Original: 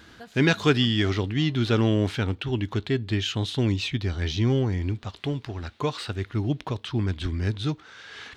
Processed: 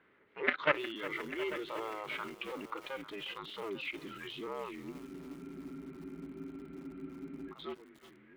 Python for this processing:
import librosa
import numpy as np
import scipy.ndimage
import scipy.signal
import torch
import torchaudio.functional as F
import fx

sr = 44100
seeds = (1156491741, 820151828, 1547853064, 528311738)

p1 = fx.cycle_switch(x, sr, every=2, mode='inverted')
p2 = fx.low_shelf(p1, sr, hz=400.0, db=-7.5)
p3 = fx.level_steps(p2, sr, step_db=20)
p4 = 10.0 ** (-24.0 / 20.0) * np.tanh(p3 / 10.0 ** (-24.0 / 20.0))
p5 = fx.noise_reduce_blind(p4, sr, reduce_db=15)
p6 = fx.dmg_noise_colour(p5, sr, seeds[0], colour='brown', level_db=-62.0)
p7 = fx.cabinet(p6, sr, low_hz=280.0, low_slope=12, high_hz=2700.0, hz=(390.0, 740.0, 1300.0, 2100.0), db=(9, -7, 4, 9))
p8 = p7 + fx.echo_single(p7, sr, ms=844, db=-14.5, dry=0)
p9 = fx.spec_freeze(p8, sr, seeds[1], at_s=4.95, hold_s=2.54)
p10 = fx.echo_crushed(p9, sr, ms=360, feedback_pct=80, bits=8, wet_db=-14.5)
y = p10 * librosa.db_to_amplitude(3.0)